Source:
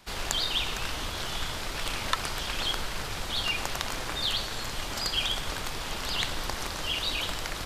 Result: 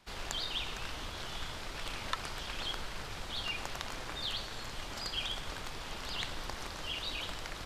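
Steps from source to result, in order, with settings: treble shelf 9.1 kHz -8.5 dB; trim -7.5 dB

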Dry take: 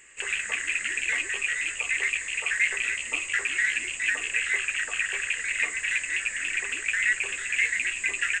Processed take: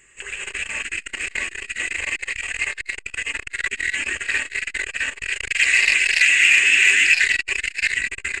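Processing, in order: 5.32–7.04 s: frequency weighting D; reverb removal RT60 1.3 s; bass shelf 250 Hz +11 dB; on a send: delay 660 ms -4.5 dB; on the sum: gated-style reverb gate 310 ms rising, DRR -7 dB; transformer saturation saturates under 2.3 kHz; trim -1.5 dB

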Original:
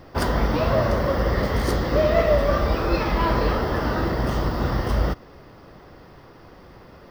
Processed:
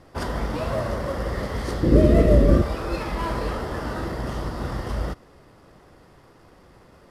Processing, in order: CVSD coder 64 kbps; 1.83–2.62 s: resonant low shelf 530 Hz +13 dB, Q 1.5; trim -5.5 dB

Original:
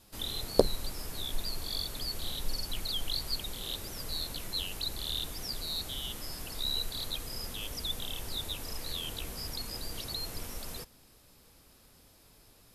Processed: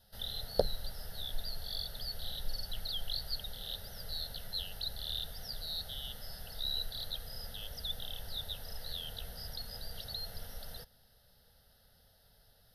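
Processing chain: static phaser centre 1.6 kHz, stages 8; trim -3 dB

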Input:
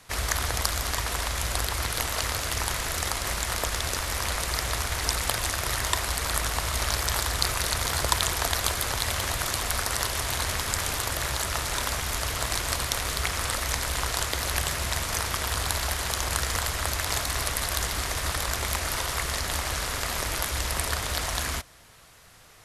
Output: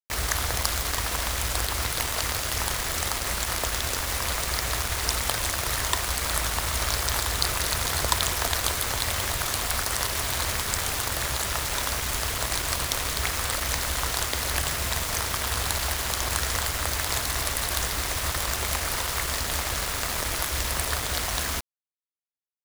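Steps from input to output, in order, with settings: bit crusher 5-bit

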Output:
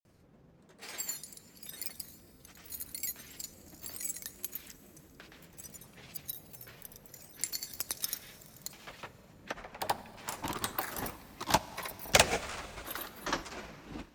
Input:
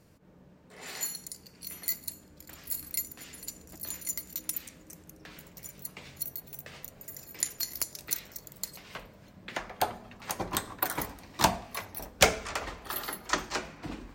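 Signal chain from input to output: granulator, pitch spread up and down by 3 st; Schroeder reverb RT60 3.2 s, combs from 30 ms, DRR 17.5 dB; trim -2.5 dB

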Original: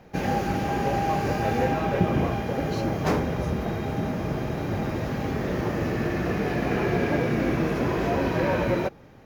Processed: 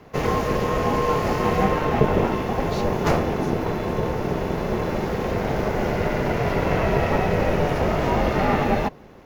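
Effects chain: frequency shift -29 Hz; ring modulator 290 Hz; trim +6.5 dB

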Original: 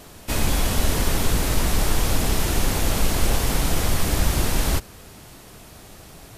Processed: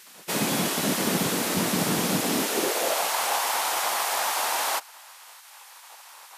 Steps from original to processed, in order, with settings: spectral gate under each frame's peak -15 dB weak; high-pass sweep 190 Hz -> 840 Hz, 2.25–3.11 s

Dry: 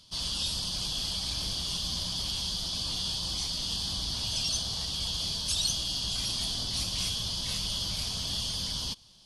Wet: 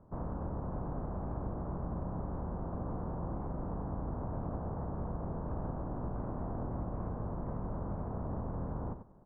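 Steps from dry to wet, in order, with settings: spectral contrast reduction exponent 0.55; Bessel low-pass 660 Hz, order 8; delay 90 ms -11.5 dB; compression 2.5:1, threshold -43 dBFS, peak gain reduction 5 dB; trim +8 dB

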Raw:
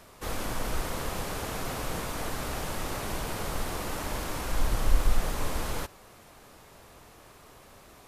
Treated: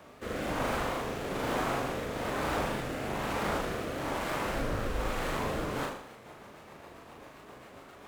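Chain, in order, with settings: median filter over 9 samples; high-pass 230 Hz 6 dB/octave; hum notches 60/120/180/240/300/360/420/480 Hz; in parallel at -1.5 dB: compression 16:1, threshold -36 dBFS, peak gain reduction 6 dB; on the sum: rotary cabinet horn 1.1 Hz, later 7.5 Hz, at 5.53 s; on a send: flutter echo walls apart 6.7 m, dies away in 0.67 s; on the sum: harmony voices -12 st -8 dB; vibrato with a chosen wave saw up 3.9 Hz, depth 100 cents

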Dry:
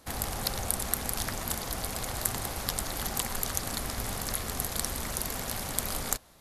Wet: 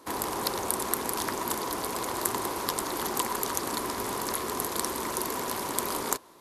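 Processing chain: high-pass 270 Hz 6 dB/octave; small resonant body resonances 360/980 Hz, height 14 dB, ringing for 20 ms

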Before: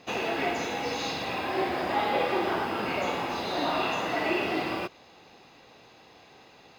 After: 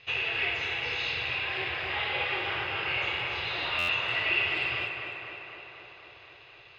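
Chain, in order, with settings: FFT filter 120 Hz 0 dB, 230 Hz -29 dB, 410 Hz -12 dB, 730 Hz -16 dB, 2.8 kHz +5 dB, 9.1 kHz -26 dB, 14 kHz -20 dB; on a send: tape echo 251 ms, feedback 79%, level -5 dB, low-pass 3.1 kHz; on the sum: buffer glitch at 3.78 s, samples 512, times 8; trim +2.5 dB

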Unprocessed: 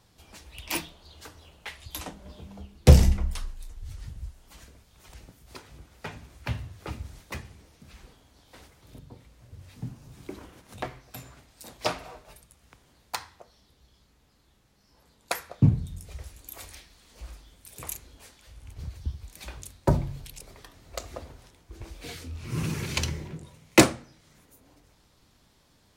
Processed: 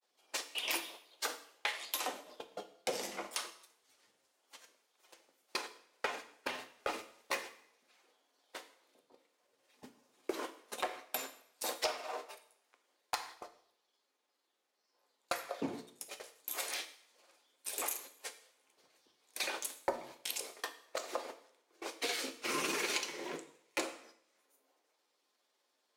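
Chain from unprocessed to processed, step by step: high-pass 370 Hz 24 dB/octave; gate -49 dBFS, range -27 dB; compression 10:1, threshold -46 dBFS, peak gain reduction 32.5 dB; saturation -34.5 dBFS, distortion -16 dB; granulator 100 ms, grains 20 per s, spray 10 ms, pitch spread up and down by 0 st; two-slope reverb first 0.61 s, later 1.7 s, from -27 dB, DRR 7.5 dB; trim +14.5 dB

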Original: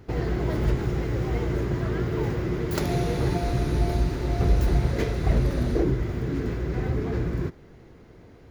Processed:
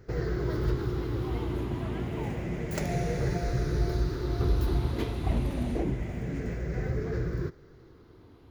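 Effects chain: drifting ripple filter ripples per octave 0.56, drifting -0.28 Hz, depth 8 dB; trim -5.5 dB

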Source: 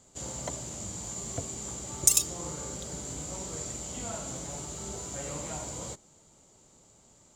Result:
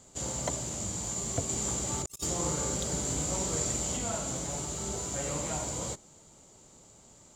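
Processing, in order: 1.49–3.97 s: compressor with a negative ratio -36 dBFS, ratio -0.5; trim +3.5 dB

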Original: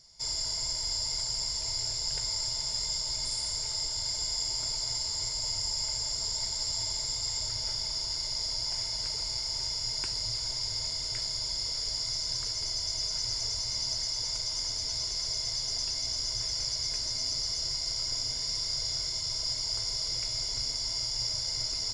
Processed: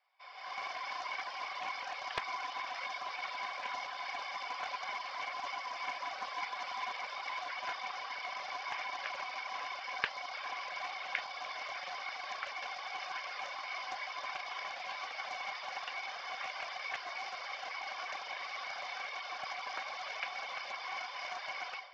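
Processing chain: feedback echo behind a low-pass 149 ms, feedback 73%, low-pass 1.4 kHz, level -12.5 dB; mistuned SSB +110 Hz 550–2800 Hz; level rider gain up to 16.5 dB; reverb removal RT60 1.2 s; on a send: echo that smears into a reverb 466 ms, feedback 42%, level -16 dB; on the sum: loudspeaker Doppler distortion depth 0.21 ms; trim -3.5 dB

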